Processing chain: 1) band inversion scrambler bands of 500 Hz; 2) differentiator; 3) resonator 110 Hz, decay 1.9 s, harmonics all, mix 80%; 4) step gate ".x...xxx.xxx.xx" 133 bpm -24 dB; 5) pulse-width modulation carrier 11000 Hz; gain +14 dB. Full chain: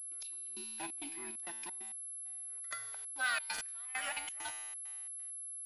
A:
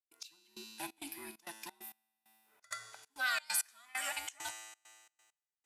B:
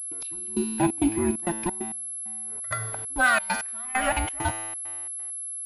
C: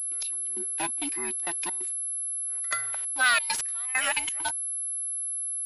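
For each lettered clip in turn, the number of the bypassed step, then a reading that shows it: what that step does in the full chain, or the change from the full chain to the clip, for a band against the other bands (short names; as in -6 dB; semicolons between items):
5, 8 kHz band -3.5 dB; 2, 250 Hz band +15.0 dB; 3, momentary loudness spread change -1 LU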